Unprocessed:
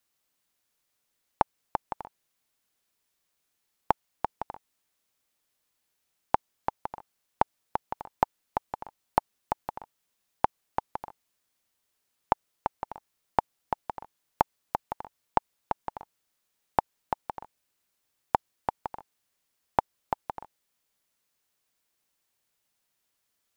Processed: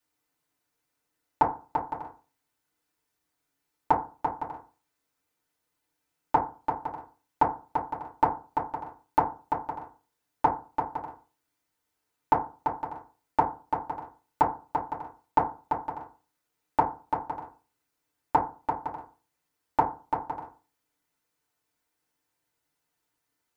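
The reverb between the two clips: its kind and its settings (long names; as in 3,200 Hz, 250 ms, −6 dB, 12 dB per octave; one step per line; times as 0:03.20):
feedback delay network reverb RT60 0.35 s, low-frequency decay 1.1×, high-frequency decay 0.35×, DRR −7 dB
level −7 dB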